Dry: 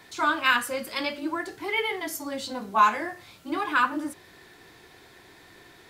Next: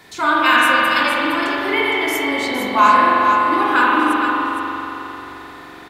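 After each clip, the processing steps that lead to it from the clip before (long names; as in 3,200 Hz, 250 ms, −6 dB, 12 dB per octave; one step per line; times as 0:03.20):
on a send: single-tap delay 462 ms −7.5 dB
on the sum: spring reverb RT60 3.6 s, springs 43 ms, chirp 40 ms, DRR −5 dB
level +5 dB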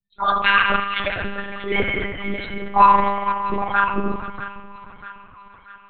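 spectral dynamics exaggerated over time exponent 3
echo with a time of its own for lows and highs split 1,100 Hz, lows 296 ms, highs 641 ms, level −12.5 dB
one-pitch LPC vocoder at 8 kHz 200 Hz
level +3.5 dB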